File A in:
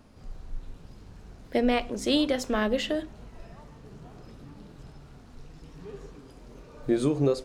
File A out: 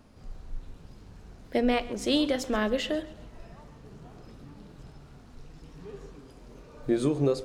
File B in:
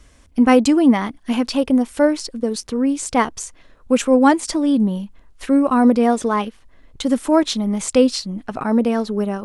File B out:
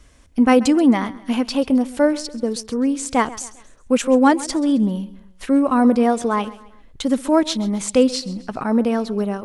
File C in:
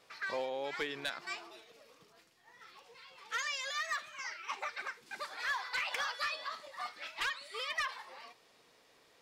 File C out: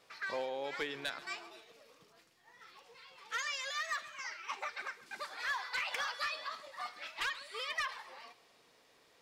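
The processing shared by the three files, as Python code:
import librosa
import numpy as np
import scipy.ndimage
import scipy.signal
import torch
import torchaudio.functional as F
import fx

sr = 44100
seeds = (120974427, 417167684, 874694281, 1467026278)

y = fx.echo_feedback(x, sr, ms=133, feedback_pct=41, wet_db=-18.5)
y = y * librosa.db_to_amplitude(-1.0)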